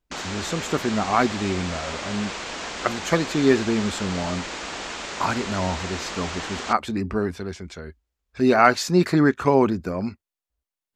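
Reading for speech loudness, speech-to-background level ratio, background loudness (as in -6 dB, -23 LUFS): -23.5 LUFS, 8.0 dB, -31.5 LUFS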